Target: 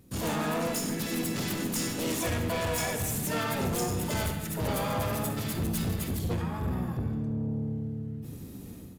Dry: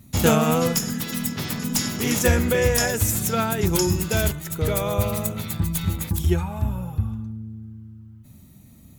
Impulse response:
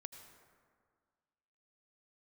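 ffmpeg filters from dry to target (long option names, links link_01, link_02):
-filter_complex "[0:a]asplit=3[link_01][link_02][link_03];[link_02]asetrate=58866,aresample=44100,atempo=0.749154,volume=-1dB[link_04];[link_03]asetrate=88200,aresample=44100,atempo=0.5,volume=-7dB[link_05];[link_01][link_04][link_05]amix=inputs=3:normalize=0,dynaudnorm=framelen=110:gausssize=5:maxgain=13dB,aresample=32000,aresample=44100,asoftclip=type=tanh:threshold=-16.5dB[link_06];[1:a]atrim=start_sample=2205,asetrate=83790,aresample=44100[link_07];[link_06][link_07]afir=irnorm=-1:irlink=0,volume=1dB"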